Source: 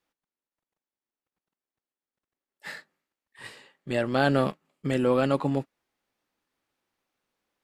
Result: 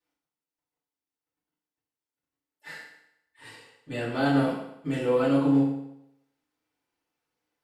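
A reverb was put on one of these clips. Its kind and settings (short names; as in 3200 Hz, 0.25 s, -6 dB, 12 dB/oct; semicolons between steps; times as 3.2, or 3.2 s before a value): FDN reverb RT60 0.8 s, low-frequency decay 0.9×, high-frequency decay 0.9×, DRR -9 dB; gain -11.5 dB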